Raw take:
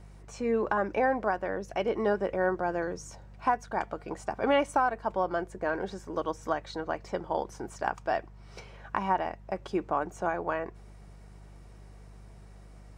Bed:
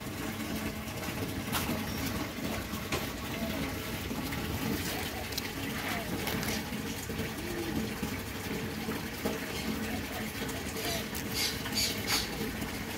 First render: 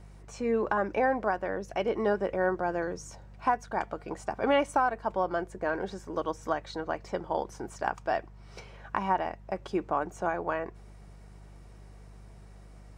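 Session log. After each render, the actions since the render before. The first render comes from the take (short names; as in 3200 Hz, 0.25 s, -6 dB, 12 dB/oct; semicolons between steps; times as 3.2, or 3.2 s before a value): nothing audible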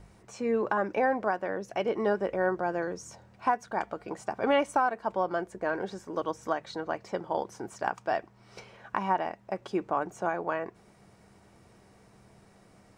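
de-hum 50 Hz, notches 3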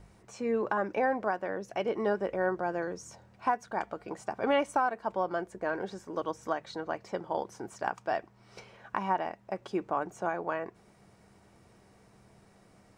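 gain -2 dB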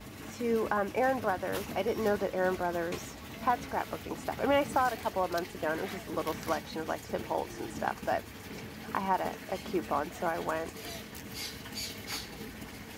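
add bed -8 dB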